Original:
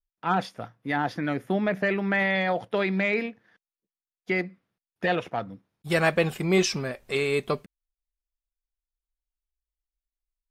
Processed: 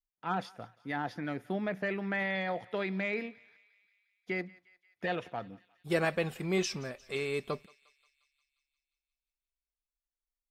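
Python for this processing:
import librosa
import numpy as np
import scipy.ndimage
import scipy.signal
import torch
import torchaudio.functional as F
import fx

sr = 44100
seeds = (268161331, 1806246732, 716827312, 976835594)

y = fx.peak_eq(x, sr, hz=390.0, db=7.0, octaves=0.98, at=(5.44, 6.05))
y = fx.echo_thinned(y, sr, ms=177, feedback_pct=68, hz=1100.0, wet_db=-21.0)
y = y * 10.0 ** (-8.5 / 20.0)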